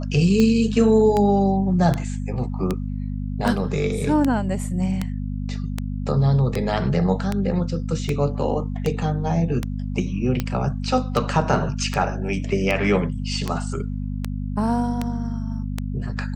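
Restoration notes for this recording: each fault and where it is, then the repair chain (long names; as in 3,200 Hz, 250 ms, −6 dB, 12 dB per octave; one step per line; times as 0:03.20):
mains hum 50 Hz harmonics 5 −27 dBFS
scratch tick 78 rpm −9 dBFS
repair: click removal
hum removal 50 Hz, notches 5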